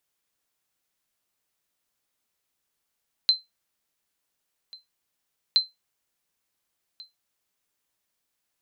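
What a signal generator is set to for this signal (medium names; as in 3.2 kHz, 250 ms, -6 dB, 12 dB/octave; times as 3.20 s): sonar ping 4.09 kHz, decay 0.18 s, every 2.27 s, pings 2, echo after 1.44 s, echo -24 dB -11 dBFS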